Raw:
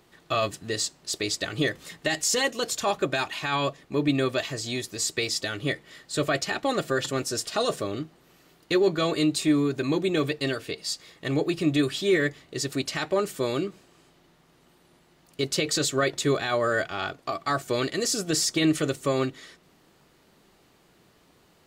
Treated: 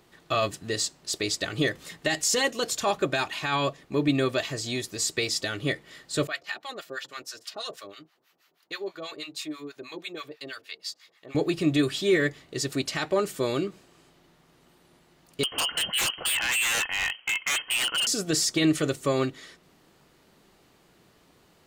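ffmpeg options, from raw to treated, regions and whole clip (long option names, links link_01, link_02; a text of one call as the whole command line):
ffmpeg -i in.wav -filter_complex "[0:a]asettb=1/sr,asplit=3[link_01][link_02][link_03];[link_01]atrim=end=6.274[link_04];[link_02]atrim=start=6.27:end=11.35,asetpts=PTS-STARTPTS,afade=type=in:duration=0.004:curve=qsin,afade=type=out:start_time=5.076:duration=0.004:curve=qsin,highpass=frequency=1300:poles=1,equalizer=frequency=8600:width=1.5:gain=-7.5,acrossover=split=810[link_05][link_06];[link_05]aeval=exprs='val(0)*(1-1/2+1/2*cos(2*PI*6.2*n/s))':channel_layout=same[link_07];[link_06]aeval=exprs='val(0)*(1-1/2-1/2*cos(2*PI*6.2*n/s))':channel_layout=same[link_08];[link_07][link_08]amix=inputs=2:normalize=0[link_09];[link_03]atrim=start=11.346[link_10];[link_04][link_09]acrossfade=duration=0.004:curve1=hsin:curve2=qsin[link_11];[link_11][link_10]acrossfade=duration=0.004:curve1=qsin:curve2=hsin,asettb=1/sr,asplit=3[link_12][link_13][link_14];[link_12]atrim=end=15.434[link_15];[link_13]atrim=start=15.43:end=18.07,asetpts=PTS-STARTPTS,afade=type=in:duration=0.004:curve=qsin,afade=type=out:start_time=2.636:duration=0.004:curve=qsin,lowpass=frequency=2800:width_type=q:width=0.5098,lowpass=frequency=2800:width_type=q:width=0.6013,lowpass=frequency=2800:width_type=q:width=0.9,lowpass=frequency=2800:width_type=q:width=2.563,afreqshift=-3300,acontrast=20,aeval=exprs='0.0944*(abs(mod(val(0)/0.0944+3,4)-2)-1)':channel_layout=same[link_16];[link_14]atrim=start=18.066[link_17];[link_15][link_16]acrossfade=duration=0.004:curve1=hsin:curve2=qsin[link_18];[link_18][link_17]acrossfade=duration=0.004:curve1=qsin:curve2=hsin" out.wav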